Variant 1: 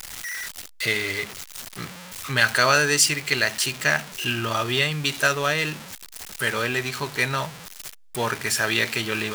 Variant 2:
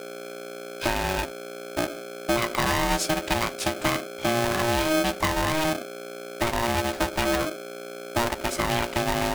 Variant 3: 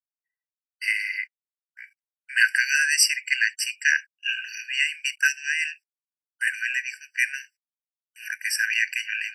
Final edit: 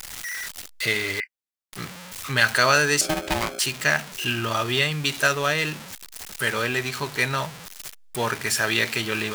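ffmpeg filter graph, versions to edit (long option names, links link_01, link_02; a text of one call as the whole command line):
ffmpeg -i take0.wav -i take1.wav -i take2.wav -filter_complex "[0:a]asplit=3[link_01][link_02][link_03];[link_01]atrim=end=1.202[link_04];[2:a]atrim=start=1.198:end=1.732[link_05];[link_02]atrim=start=1.728:end=3.012[link_06];[1:a]atrim=start=3.008:end=3.592[link_07];[link_03]atrim=start=3.588[link_08];[link_04][link_05]acrossfade=duration=0.004:curve1=hsin:curve2=hsin[link_09];[link_09][link_06]acrossfade=duration=0.004:curve1=hsin:curve2=hsin[link_10];[link_10][link_07]acrossfade=duration=0.004:curve1=hsin:curve2=hsin[link_11];[link_11][link_08]acrossfade=duration=0.004:curve1=hsin:curve2=hsin" out.wav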